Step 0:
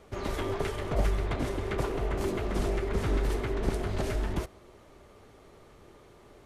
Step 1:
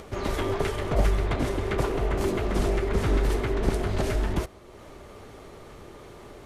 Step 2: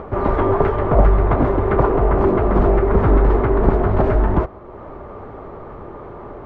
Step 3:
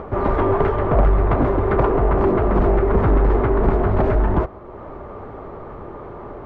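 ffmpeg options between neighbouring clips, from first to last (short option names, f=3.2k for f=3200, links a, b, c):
-af "acompressor=mode=upward:threshold=-42dB:ratio=2.5,volume=4.5dB"
-filter_complex "[0:a]asplit=2[a][b];[b]asoftclip=type=hard:threshold=-19.5dB,volume=-8dB[c];[a][c]amix=inputs=2:normalize=0,lowpass=f=1.1k:t=q:w=1.5,volume=7dB"
-af "asoftclip=type=tanh:threshold=-8dB"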